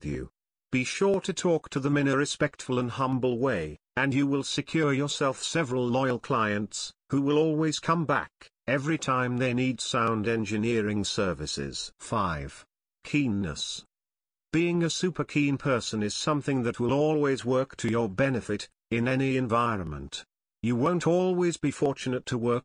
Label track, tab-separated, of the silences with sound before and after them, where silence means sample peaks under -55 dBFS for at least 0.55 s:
13.860000	14.530000	silence